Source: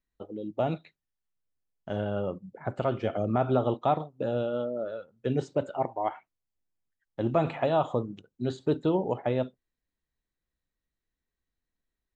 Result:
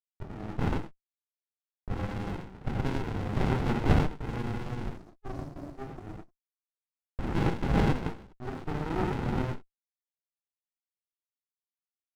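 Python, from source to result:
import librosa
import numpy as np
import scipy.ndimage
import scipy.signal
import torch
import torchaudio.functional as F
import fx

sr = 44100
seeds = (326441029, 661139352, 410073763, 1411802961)

y = fx.delta_hold(x, sr, step_db=-35.5)
y = fx.spec_box(y, sr, start_s=4.85, length_s=1.72, low_hz=420.0, high_hz=4200.0, gain_db=-21)
y = fx.auto_wah(y, sr, base_hz=470.0, top_hz=1100.0, q=2.6, full_db=-27.5, direction='up')
y = fx.rev_gated(y, sr, seeds[0], gate_ms=150, shape='flat', drr_db=-5.0)
y = fx.running_max(y, sr, window=65)
y = y * 10.0 ** (8.5 / 20.0)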